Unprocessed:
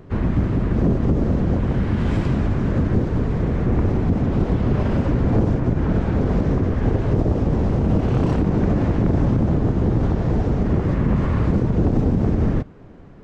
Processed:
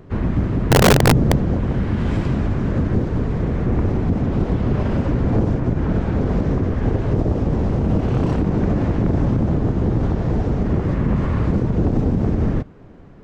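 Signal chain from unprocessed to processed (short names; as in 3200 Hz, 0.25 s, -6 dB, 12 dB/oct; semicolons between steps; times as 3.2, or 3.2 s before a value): 0.69–1.36 bell 130 Hz +14.5 dB -> +7.5 dB 0.96 oct; wrapped overs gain 6 dB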